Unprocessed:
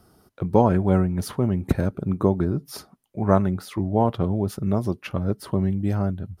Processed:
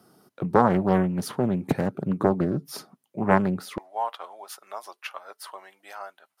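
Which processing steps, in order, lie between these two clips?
high-pass 140 Hz 24 dB/octave, from 3.78 s 790 Hz; loudspeaker Doppler distortion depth 0.48 ms

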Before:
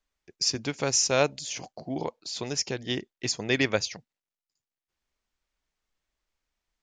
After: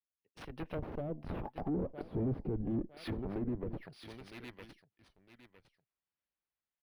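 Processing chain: self-modulated delay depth 0.35 ms; Doppler pass-by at 2.09 s, 38 m/s, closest 3 m; high-pass 73 Hz 12 dB/octave; in parallel at -8.5 dB: Schmitt trigger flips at -52 dBFS; on the sum: distance through air 320 m; on a send: feedback delay 958 ms, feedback 27%, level -19.5 dB; on the sum: transient shaper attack -8 dB, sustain -1 dB; treble shelf 3.5 kHz +11.5 dB; valve stage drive 52 dB, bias 0.45; low-pass that closes with the level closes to 380 Hz, closed at -55 dBFS; level rider gain up to 14 dB; decimation joined by straight lines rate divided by 3×; trim +9.5 dB

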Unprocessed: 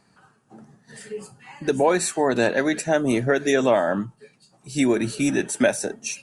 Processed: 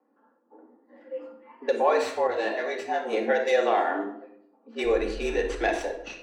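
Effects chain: tracing distortion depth 0.071 ms; level-controlled noise filter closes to 710 Hz, open at -20 dBFS; three-band isolator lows -22 dB, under 150 Hz, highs -22 dB, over 5.5 kHz; frequency shift +190 Hz; 4.83–5.65 s: mains buzz 50 Hz, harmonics 3, -38 dBFS; simulated room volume 1900 m³, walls furnished, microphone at 2.6 m; frequency shift -93 Hz; 2.27–3.13 s: detune thickener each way 14 cents; trim -5.5 dB

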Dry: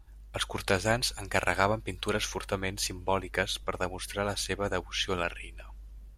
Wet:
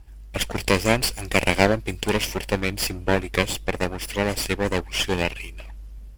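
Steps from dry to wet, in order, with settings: comb filter that takes the minimum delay 0.38 ms; trim +8 dB

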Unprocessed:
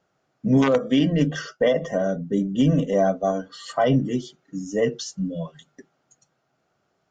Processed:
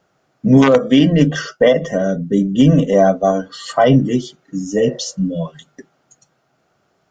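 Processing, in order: 1.73–2.60 s: peaking EQ 880 Hz -7.5 dB 0.96 oct; 4.81–5.16 s: spectral replace 470–2100 Hz both; trim +8 dB

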